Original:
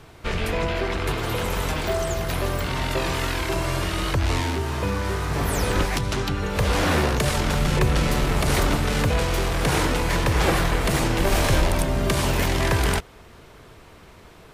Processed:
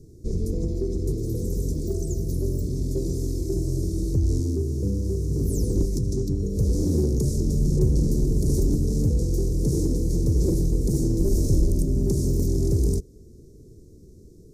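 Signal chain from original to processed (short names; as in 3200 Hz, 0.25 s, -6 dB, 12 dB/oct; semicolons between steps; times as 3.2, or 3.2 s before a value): elliptic band-stop 390–5900 Hz, stop band 40 dB; high shelf 5100 Hz -9.5 dB; in parallel at -11.5 dB: hard clip -21 dBFS, distortion -12 dB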